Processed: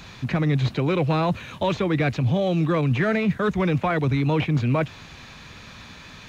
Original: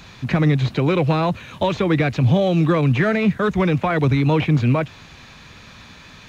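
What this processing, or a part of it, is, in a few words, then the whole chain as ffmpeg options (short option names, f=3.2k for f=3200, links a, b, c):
compression on the reversed sound: -af "areverse,acompressor=threshold=-18dB:ratio=6,areverse"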